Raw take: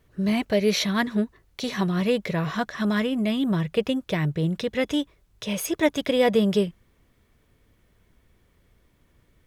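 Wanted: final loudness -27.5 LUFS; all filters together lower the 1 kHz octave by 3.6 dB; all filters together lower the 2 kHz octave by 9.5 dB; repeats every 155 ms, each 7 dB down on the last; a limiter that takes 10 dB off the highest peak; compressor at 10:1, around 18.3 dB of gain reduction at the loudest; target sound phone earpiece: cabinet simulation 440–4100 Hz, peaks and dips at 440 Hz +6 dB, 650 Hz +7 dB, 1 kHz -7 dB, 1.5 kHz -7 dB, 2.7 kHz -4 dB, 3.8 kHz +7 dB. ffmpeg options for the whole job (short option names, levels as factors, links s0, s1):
-af "equalizer=f=1000:t=o:g=-5,equalizer=f=2000:t=o:g=-6.5,acompressor=threshold=0.0158:ratio=10,alimiter=level_in=2.51:limit=0.0631:level=0:latency=1,volume=0.398,highpass=440,equalizer=f=440:t=q:w=4:g=6,equalizer=f=650:t=q:w=4:g=7,equalizer=f=1000:t=q:w=4:g=-7,equalizer=f=1500:t=q:w=4:g=-7,equalizer=f=2700:t=q:w=4:g=-4,equalizer=f=3800:t=q:w=4:g=7,lowpass=f=4100:w=0.5412,lowpass=f=4100:w=1.3066,aecho=1:1:155|310|465|620|775:0.447|0.201|0.0905|0.0407|0.0183,volume=6.68"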